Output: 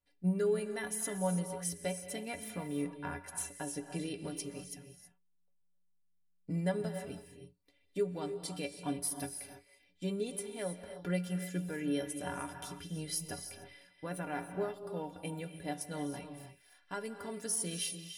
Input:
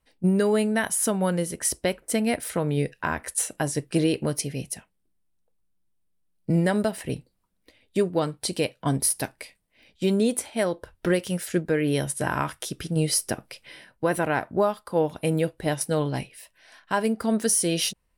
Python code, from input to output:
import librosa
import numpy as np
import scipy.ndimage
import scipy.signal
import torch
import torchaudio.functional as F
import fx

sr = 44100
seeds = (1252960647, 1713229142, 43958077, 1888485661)

y = fx.stiff_resonator(x, sr, f0_hz=85.0, decay_s=0.26, stiffness=0.03)
y = fx.rev_gated(y, sr, seeds[0], gate_ms=350, shape='rising', drr_db=8.0)
y = y * 10.0 ** (-5.0 / 20.0)